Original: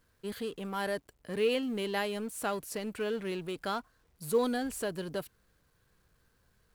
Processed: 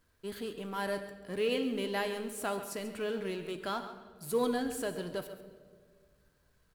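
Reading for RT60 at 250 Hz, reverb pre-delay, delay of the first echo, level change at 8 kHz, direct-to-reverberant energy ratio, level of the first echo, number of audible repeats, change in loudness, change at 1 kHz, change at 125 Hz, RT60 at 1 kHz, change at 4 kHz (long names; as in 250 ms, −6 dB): 2.0 s, 3 ms, 137 ms, −1.5 dB, 6.5 dB, −12.5 dB, 1, −1.0 dB, −1.0 dB, −2.0 dB, 1.5 s, −1.0 dB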